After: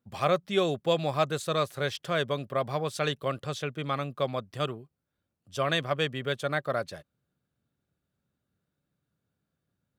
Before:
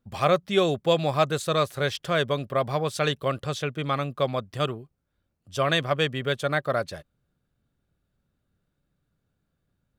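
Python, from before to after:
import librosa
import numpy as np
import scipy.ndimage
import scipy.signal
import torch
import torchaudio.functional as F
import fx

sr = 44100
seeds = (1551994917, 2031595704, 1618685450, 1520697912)

y = scipy.signal.sosfilt(scipy.signal.butter(2, 91.0, 'highpass', fs=sr, output='sos'), x)
y = y * librosa.db_to_amplitude(-4.0)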